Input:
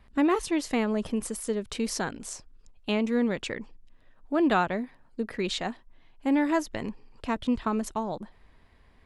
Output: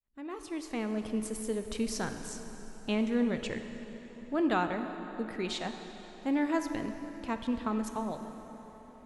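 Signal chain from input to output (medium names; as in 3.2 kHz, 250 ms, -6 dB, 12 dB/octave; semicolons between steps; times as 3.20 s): fade-in on the opening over 1.15 s; 1.34–3.59 s: bass shelf 130 Hz +9 dB; plate-style reverb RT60 4.4 s, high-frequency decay 0.7×, DRR 6.5 dB; trim -5.5 dB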